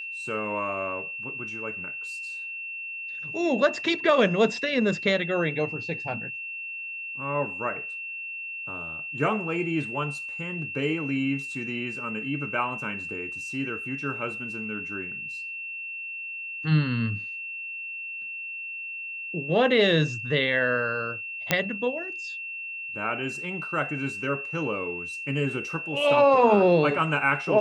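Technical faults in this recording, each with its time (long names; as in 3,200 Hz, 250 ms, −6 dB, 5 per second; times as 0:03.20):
whistle 2,700 Hz −33 dBFS
0:21.51: click −5 dBFS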